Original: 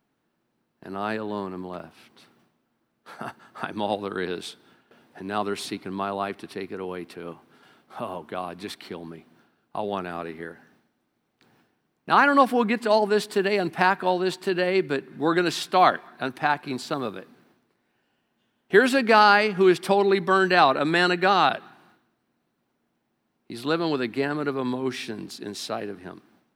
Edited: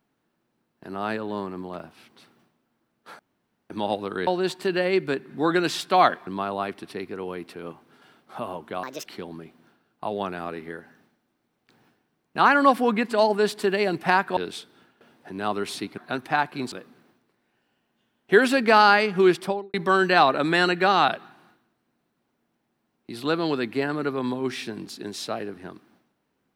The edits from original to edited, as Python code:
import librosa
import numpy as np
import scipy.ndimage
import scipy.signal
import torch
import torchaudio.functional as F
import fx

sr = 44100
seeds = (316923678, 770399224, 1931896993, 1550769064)

y = fx.studio_fade_out(x, sr, start_s=19.73, length_s=0.42)
y = fx.edit(y, sr, fx.room_tone_fill(start_s=3.19, length_s=0.51),
    fx.swap(start_s=4.27, length_s=1.61, other_s=14.09, other_length_s=2.0),
    fx.speed_span(start_s=8.44, length_s=0.34, speed=1.49),
    fx.cut(start_s=16.83, length_s=0.3), tone=tone)